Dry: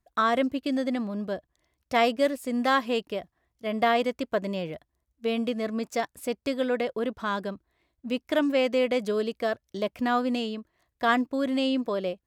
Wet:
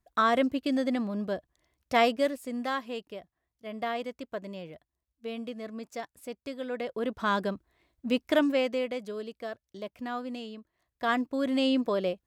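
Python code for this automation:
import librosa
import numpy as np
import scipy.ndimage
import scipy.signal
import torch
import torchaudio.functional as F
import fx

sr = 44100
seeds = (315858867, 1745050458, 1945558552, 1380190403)

y = fx.gain(x, sr, db=fx.line((2.01, -0.5), (2.83, -9.5), (6.63, -9.5), (7.28, 2.0), (8.28, 2.0), (9.04, -10.0), (10.41, -10.0), (11.71, 0.5)))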